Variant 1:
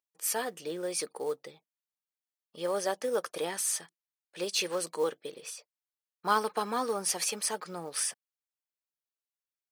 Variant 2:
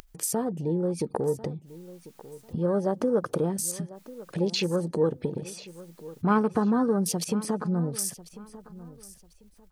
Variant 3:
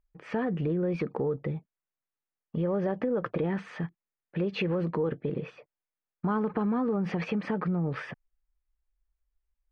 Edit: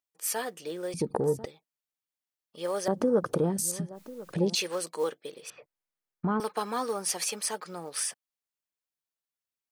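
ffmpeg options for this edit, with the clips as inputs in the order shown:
-filter_complex "[1:a]asplit=2[a][b];[0:a]asplit=4[c][d][e][f];[c]atrim=end=0.942[g];[a]atrim=start=0.938:end=1.452[h];[d]atrim=start=1.448:end=2.882[i];[b]atrim=start=2.878:end=4.552[j];[e]atrim=start=4.548:end=5.502[k];[2:a]atrim=start=5.498:end=6.402[l];[f]atrim=start=6.398[m];[g][h]acrossfade=d=0.004:c1=hsin:c2=hsin[n];[n][i]acrossfade=d=0.004:c1=hsin:c2=hsin[o];[o][j]acrossfade=d=0.004:c1=hsin:c2=hsin[p];[p][k]acrossfade=d=0.004:c1=hsin:c2=hsin[q];[q][l]acrossfade=d=0.004:c1=hsin:c2=hsin[r];[r][m]acrossfade=d=0.004:c1=hsin:c2=hsin"

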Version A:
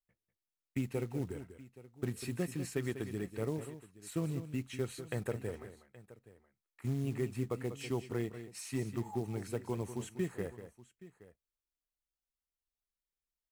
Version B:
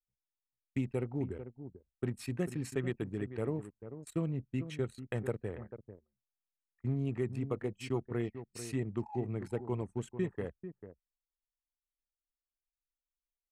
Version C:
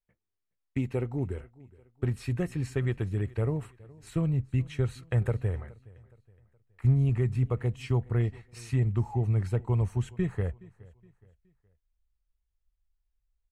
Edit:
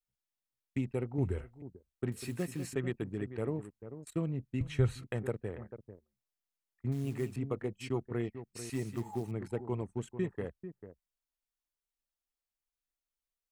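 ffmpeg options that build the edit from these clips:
-filter_complex "[2:a]asplit=2[a][b];[0:a]asplit=3[c][d][e];[1:a]asplit=6[f][g][h][i][j][k];[f]atrim=end=1.182[l];[a]atrim=start=1.178:end=1.622[m];[g]atrim=start=1.618:end=2.122[n];[c]atrim=start=2.118:end=2.732[o];[h]atrim=start=2.728:end=4.612[p];[b]atrim=start=4.608:end=5.042[q];[i]atrim=start=5.038:end=6.922[r];[d]atrim=start=6.918:end=7.362[s];[j]atrim=start=7.358:end=8.702[t];[e]atrim=start=8.698:end=9.312[u];[k]atrim=start=9.308[v];[l][m]acrossfade=d=0.004:c1=hsin:c2=hsin[w];[w][n]acrossfade=d=0.004:c1=hsin:c2=hsin[x];[x][o]acrossfade=d=0.004:c1=hsin:c2=hsin[y];[y][p]acrossfade=d=0.004:c1=hsin:c2=hsin[z];[z][q]acrossfade=d=0.004:c1=hsin:c2=hsin[aa];[aa][r]acrossfade=d=0.004:c1=hsin:c2=hsin[ab];[ab][s]acrossfade=d=0.004:c1=hsin:c2=hsin[ac];[ac][t]acrossfade=d=0.004:c1=hsin:c2=hsin[ad];[ad][u]acrossfade=d=0.004:c1=hsin:c2=hsin[ae];[ae][v]acrossfade=d=0.004:c1=hsin:c2=hsin"

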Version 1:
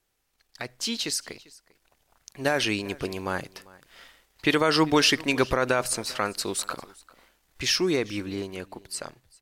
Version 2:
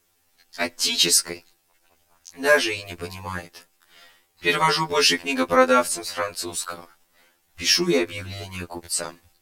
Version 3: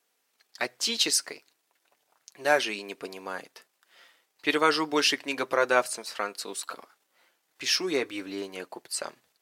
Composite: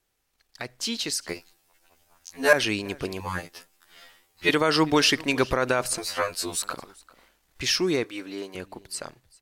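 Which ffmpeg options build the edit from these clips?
-filter_complex "[1:a]asplit=3[a][b][c];[0:a]asplit=5[d][e][f][g][h];[d]atrim=end=1.292[i];[a]atrim=start=1.288:end=2.532[j];[e]atrim=start=2.528:end=3.202[k];[b]atrim=start=3.198:end=4.492[l];[f]atrim=start=4.488:end=5.982[m];[c]atrim=start=5.978:end=6.622[n];[g]atrim=start=6.618:end=8.042[o];[2:a]atrim=start=8.038:end=8.552[p];[h]atrim=start=8.548[q];[i][j]acrossfade=d=0.004:c1=hsin:c2=hsin[r];[r][k]acrossfade=d=0.004:c1=hsin:c2=hsin[s];[s][l]acrossfade=d=0.004:c1=hsin:c2=hsin[t];[t][m]acrossfade=d=0.004:c1=hsin:c2=hsin[u];[u][n]acrossfade=d=0.004:c1=hsin:c2=hsin[v];[v][o]acrossfade=d=0.004:c1=hsin:c2=hsin[w];[w][p]acrossfade=d=0.004:c1=hsin:c2=hsin[x];[x][q]acrossfade=d=0.004:c1=hsin:c2=hsin"

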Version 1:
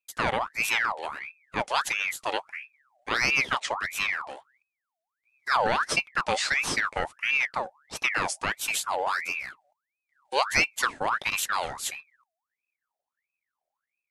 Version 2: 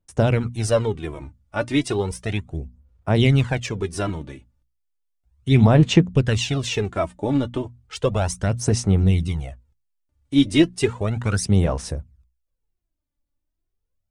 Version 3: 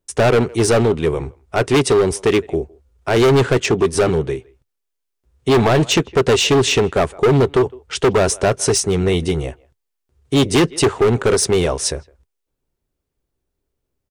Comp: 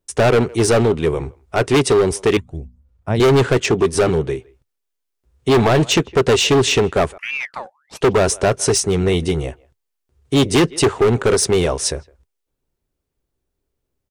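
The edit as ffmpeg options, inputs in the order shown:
-filter_complex "[2:a]asplit=3[a][b][c];[a]atrim=end=2.372[d];[1:a]atrim=start=2.368:end=3.202[e];[b]atrim=start=3.198:end=7.182[f];[0:a]atrim=start=7.178:end=8.012[g];[c]atrim=start=8.008[h];[d][e]acrossfade=d=0.004:c1=hsin:c2=hsin[i];[i][f]acrossfade=d=0.004:c1=hsin:c2=hsin[j];[j][g]acrossfade=d=0.004:c1=hsin:c2=hsin[k];[k][h]acrossfade=d=0.004:c1=hsin:c2=hsin"

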